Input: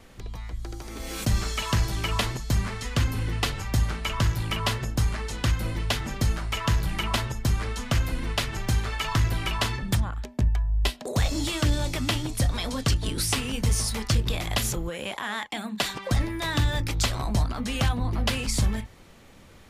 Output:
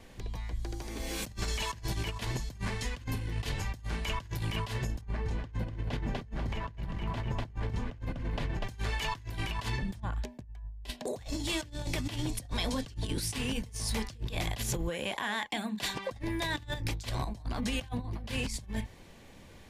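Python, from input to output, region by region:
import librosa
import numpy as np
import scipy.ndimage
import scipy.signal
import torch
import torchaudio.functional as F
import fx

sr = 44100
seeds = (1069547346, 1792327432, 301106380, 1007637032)

y = fx.chain(x, sr, fx.lowpass(hz=1000.0, slope=6),
    fx.echo_feedback(ms=245, feedback_pct=36, wet_db=-6.5), at=(5.01, 8.64))
y = fx.high_shelf(y, sr, hz=8900.0, db=-3.0)
y = fx.over_compress(y, sr, threshold_db=-29.0, ratio=-0.5)
y = fx.notch(y, sr, hz=1300.0, q=5.8)
y = F.gain(torch.from_numpy(y), -5.0).numpy()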